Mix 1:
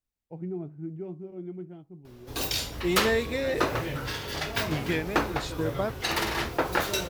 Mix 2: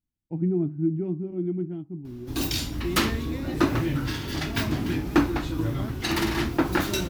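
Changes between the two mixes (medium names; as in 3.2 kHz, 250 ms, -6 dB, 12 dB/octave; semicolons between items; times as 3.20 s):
first voice +3.0 dB; second voice -10.5 dB; master: add resonant low shelf 380 Hz +6.5 dB, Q 3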